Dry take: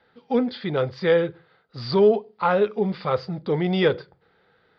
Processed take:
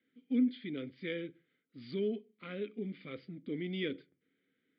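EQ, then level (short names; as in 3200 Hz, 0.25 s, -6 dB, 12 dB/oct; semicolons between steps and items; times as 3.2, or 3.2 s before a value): dynamic EQ 4300 Hz, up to +5 dB, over -44 dBFS, Q 1.1; vowel filter i; air absorption 190 m; 0.0 dB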